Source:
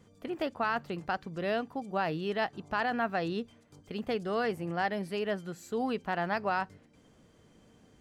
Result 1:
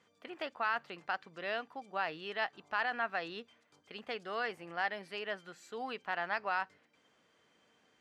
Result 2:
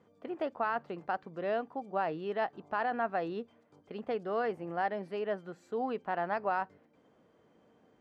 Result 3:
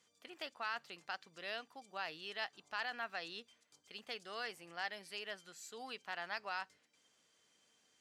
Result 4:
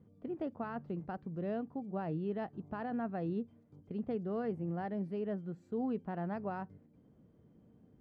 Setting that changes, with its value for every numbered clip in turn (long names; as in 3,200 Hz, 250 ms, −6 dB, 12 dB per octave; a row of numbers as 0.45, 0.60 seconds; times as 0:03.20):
resonant band-pass, frequency: 2,100, 690, 5,600, 160 Hertz